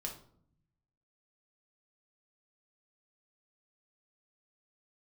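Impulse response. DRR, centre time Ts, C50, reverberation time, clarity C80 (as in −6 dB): 0.5 dB, 19 ms, 8.5 dB, 0.60 s, 13.0 dB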